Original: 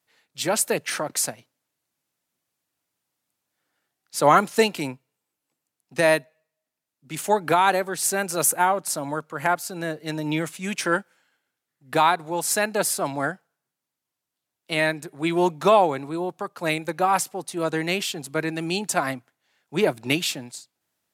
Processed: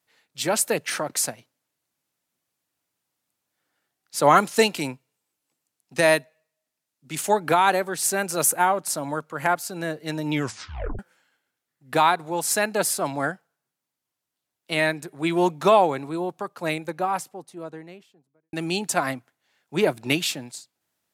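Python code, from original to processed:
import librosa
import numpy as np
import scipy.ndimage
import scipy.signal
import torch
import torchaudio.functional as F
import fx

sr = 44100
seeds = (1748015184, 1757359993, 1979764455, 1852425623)

y = fx.peak_eq(x, sr, hz=6800.0, db=3.5, octaves=2.4, at=(4.35, 7.31))
y = fx.studio_fade_out(y, sr, start_s=16.14, length_s=2.39)
y = fx.edit(y, sr, fx.tape_stop(start_s=10.33, length_s=0.66), tone=tone)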